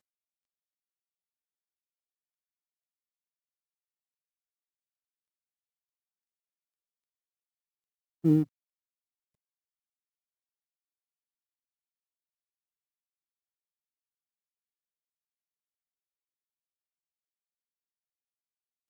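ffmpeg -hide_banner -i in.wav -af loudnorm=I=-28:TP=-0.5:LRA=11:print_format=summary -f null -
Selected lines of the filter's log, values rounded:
Input Integrated:    -26.9 LUFS
Input True Peak:     -13.2 dBTP
Input LRA:             0.0 LU
Input Threshold:     -37.6 LUFS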